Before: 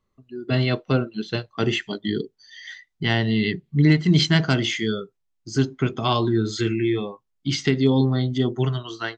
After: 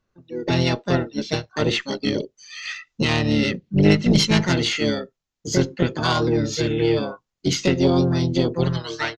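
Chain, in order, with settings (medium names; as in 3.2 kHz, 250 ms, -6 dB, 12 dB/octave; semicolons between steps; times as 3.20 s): recorder AGC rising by 9.5 dB/s; treble shelf 5.4 kHz +4 dB; harmony voices -7 st -13 dB, +5 st -1 dB; resampled via 16 kHz; Chebyshev shaper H 2 -7 dB, 4 -30 dB, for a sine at -0.5 dBFS; trim -2 dB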